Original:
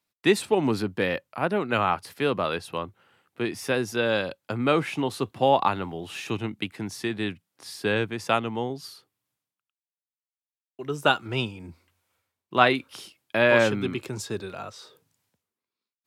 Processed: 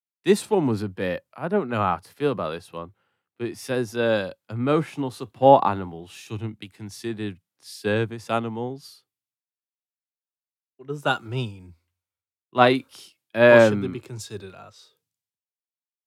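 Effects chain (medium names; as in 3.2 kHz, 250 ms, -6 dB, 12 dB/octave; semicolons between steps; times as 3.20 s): dynamic bell 2.6 kHz, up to -6 dB, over -41 dBFS, Q 1; harmonic-percussive split percussive -6 dB; three bands expanded up and down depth 70%; trim +3 dB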